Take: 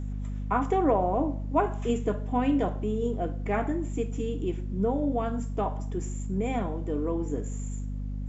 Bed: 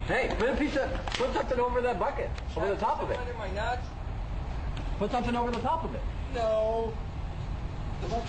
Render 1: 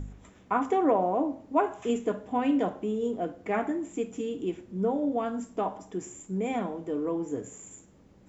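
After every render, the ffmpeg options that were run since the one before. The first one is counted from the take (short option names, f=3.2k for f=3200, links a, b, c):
-af "bandreject=f=50:t=h:w=4,bandreject=f=100:t=h:w=4,bandreject=f=150:t=h:w=4,bandreject=f=200:t=h:w=4,bandreject=f=250:t=h:w=4"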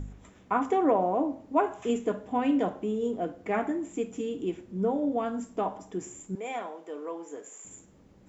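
-filter_complex "[0:a]asettb=1/sr,asplit=3[a][b][c];[a]atrim=end=6.354[d];[b]atrim=start=6.35:end=7.65,asetpts=PTS-STARTPTS,afade=t=in:d=0.004:c=qsin,afade=t=out:st=1.296:d=0.004:c=qsin,highpass=580[e];[c]atrim=start=7.646[f];[d][e]acrossfade=d=0.004:c1=hsin:c2=qsin[g];[g][f]acrossfade=d=0.004:c1=qsin:c2=hsin"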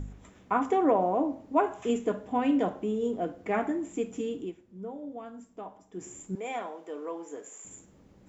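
-filter_complex "[0:a]asplit=3[a][b][c];[a]atrim=end=4.54,asetpts=PTS-STARTPTS,afade=t=out:st=4.25:d=0.29:c=qsin:silence=0.251189[d];[b]atrim=start=4.54:end=5.91,asetpts=PTS-STARTPTS,volume=-12dB[e];[c]atrim=start=5.91,asetpts=PTS-STARTPTS,afade=t=in:d=0.29:c=qsin:silence=0.251189[f];[d][e][f]concat=n=3:v=0:a=1"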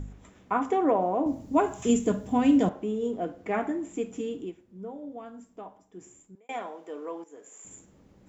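-filter_complex "[0:a]asettb=1/sr,asplit=3[a][b][c];[a]atrim=end=1.264[d];[b]atrim=start=1.26:end=2.69,asetpts=PTS-STARTPTS,afade=t=in:d=0.004:c=qsin,afade=t=out:st=1.426:d=0.004:c=qsin,bass=f=250:g=13,treble=f=4k:g=14[e];[c]atrim=start=2.686[f];[d][e]acrossfade=d=0.004:c1=hsin:c2=qsin[g];[g][f]acrossfade=d=0.004:c1=qsin:c2=hsin,asplit=3[h][i][j];[h]atrim=end=6.49,asetpts=PTS-STARTPTS,afade=t=out:st=5.52:d=0.97[k];[i]atrim=start=6.49:end=7.24,asetpts=PTS-STARTPTS,afade=t=in:d=0.004:c=hsin,afade=t=out:st=0.746:d=0.004:c=hsin:silence=0.237137[l];[j]atrim=start=7.24,asetpts=PTS-STARTPTS,afade=t=in:d=0.46:silence=0.237137[m];[k][l][m]concat=n=3:v=0:a=1"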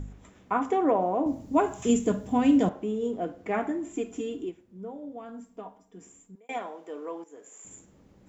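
-filter_complex "[0:a]asettb=1/sr,asplit=3[a][b][c];[a]atrim=end=3.854[d];[b]atrim=start=3.85:end=4.49,asetpts=PTS-STARTPTS,afade=t=in:d=0.004:c=qsin,afade=t=out:st=0.636:d=0.004:c=qsin,aecho=1:1:2.9:0.55,atrim=end_sample=28224[e];[c]atrim=start=4.486[f];[d][e]acrossfade=d=0.004:c1=hsin:c2=qsin[g];[g][f]acrossfade=d=0.004:c1=qsin:c2=hsin,asettb=1/sr,asplit=3[h][i][j];[h]atrim=end=5.284[k];[i]atrim=start=5.28:end=6.58,asetpts=PTS-STARTPTS,afade=t=in:d=0.004:c=qsin,afade=t=out:st=1.296:d=0.004:c=qsin,aecho=1:1:4.3:0.52,atrim=end_sample=57330[l];[j]atrim=start=6.576[m];[k][l]acrossfade=d=0.004:c1=hsin:c2=qsin[n];[n][m]acrossfade=d=0.004:c1=qsin:c2=hsin"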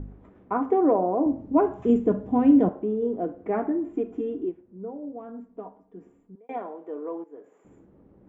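-af "lowpass=1.3k,equalizer=f=360:t=o:w=1.1:g=5.5"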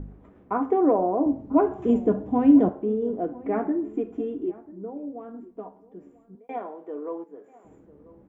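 -filter_complex "[0:a]asplit=2[a][b];[b]adelay=14,volume=-13dB[c];[a][c]amix=inputs=2:normalize=0,asplit=2[d][e];[e]adelay=991.3,volume=-20dB,highshelf=f=4k:g=-22.3[f];[d][f]amix=inputs=2:normalize=0"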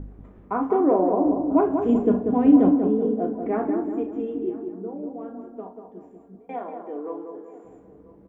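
-filter_complex "[0:a]asplit=2[a][b];[b]adelay=37,volume=-9dB[c];[a][c]amix=inputs=2:normalize=0,asplit=2[d][e];[e]adelay=189,lowpass=f=1.6k:p=1,volume=-5.5dB,asplit=2[f][g];[g]adelay=189,lowpass=f=1.6k:p=1,volume=0.48,asplit=2[h][i];[i]adelay=189,lowpass=f=1.6k:p=1,volume=0.48,asplit=2[j][k];[k]adelay=189,lowpass=f=1.6k:p=1,volume=0.48,asplit=2[l][m];[m]adelay=189,lowpass=f=1.6k:p=1,volume=0.48,asplit=2[n][o];[o]adelay=189,lowpass=f=1.6k:p=1,volume=0.48[p];[d][f][h][j][l][n][p]amix=inputs=7:normalize=0"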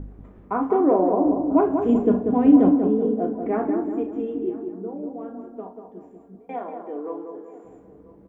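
-af "volume=1dB"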